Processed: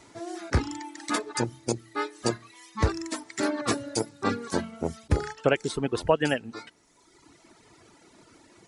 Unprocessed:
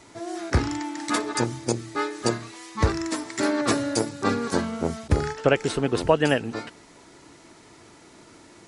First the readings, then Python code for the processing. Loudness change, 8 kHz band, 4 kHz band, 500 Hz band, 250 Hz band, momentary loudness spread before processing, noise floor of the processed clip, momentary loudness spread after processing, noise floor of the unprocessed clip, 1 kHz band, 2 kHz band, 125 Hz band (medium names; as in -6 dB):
-3.5 dB, -3.0 dB, -3.5 dB, -3.5 dB, -4.5 dB, 10 LU, -60 dBFS, 12 LU, -51 dBFS, -3.5 dB, -3.5 dB, -3.5 dB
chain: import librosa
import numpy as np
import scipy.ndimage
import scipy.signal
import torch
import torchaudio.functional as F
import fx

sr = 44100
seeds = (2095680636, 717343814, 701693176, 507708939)

y = fx.dereverb_blind(x, sr, rt60_s=1.4)
y = y * 10.0 ** (-2.5 / 20.0)